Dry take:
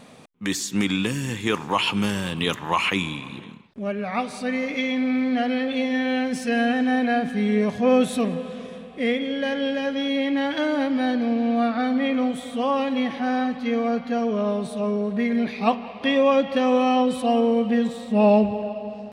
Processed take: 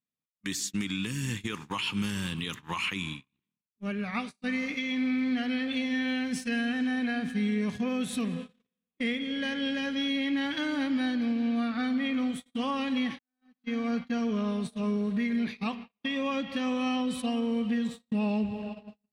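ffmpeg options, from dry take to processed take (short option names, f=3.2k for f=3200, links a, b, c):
-filter_complex "[0:a]asplit=2[a][b];[a]atrim=end=13.19,asetpts=PTS-STARTPTS,afade=t=out:st=13.186:d=0.004:c=hsin[c];[b]atrim=start=13.19,asetpts=PTS-STARTPTS,afade=t=in:d=0.81[d];[c][d]concat=n=2:v=0:a=1,agate=range=-46dB:threshold=-29dB:ratio=16:detection=peak,equalizer=f=620:t=o:w=1.4:g=-14,alimiter=limit=-21.5dB:level=0:latency=1:release=289"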